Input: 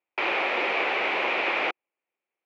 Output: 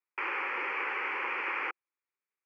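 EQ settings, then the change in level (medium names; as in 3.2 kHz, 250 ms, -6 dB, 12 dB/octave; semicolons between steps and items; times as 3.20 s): band-pass 750–6400 Hz; tilt shelf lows +7.5 dB; static phaser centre 1.6 kHz, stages 4; 0.0 dB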